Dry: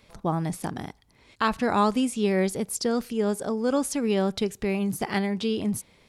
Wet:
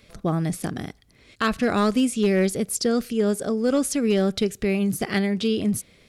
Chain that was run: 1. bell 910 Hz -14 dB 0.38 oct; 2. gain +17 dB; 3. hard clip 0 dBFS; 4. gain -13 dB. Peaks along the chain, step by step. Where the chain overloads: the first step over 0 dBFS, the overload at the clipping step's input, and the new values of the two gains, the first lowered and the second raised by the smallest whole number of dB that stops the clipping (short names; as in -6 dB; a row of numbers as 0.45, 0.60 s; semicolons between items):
-13.0, +4.0, 0.0, -13.0 dBFS; step 2, 4.0 dB; step 2 +13 dB, step 4 -9 dB